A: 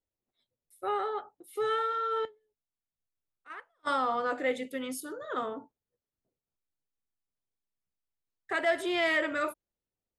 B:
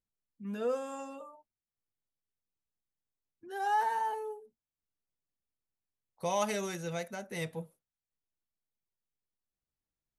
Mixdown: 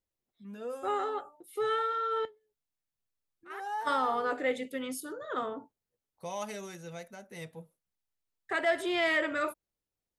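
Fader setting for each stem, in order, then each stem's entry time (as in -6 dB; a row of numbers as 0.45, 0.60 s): -0.5, -6.5 dB; 0.00, 0.00 s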